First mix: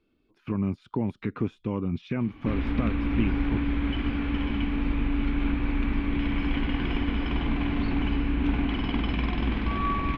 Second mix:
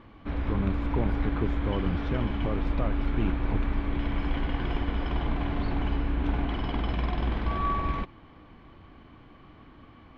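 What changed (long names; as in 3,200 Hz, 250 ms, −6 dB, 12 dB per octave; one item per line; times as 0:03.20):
background: entry −2.20 s
master: add graphic EQ with 15 bands 250 Hz −8 dB, 630 Hz +5 dB, 2,500 Hz −8 dB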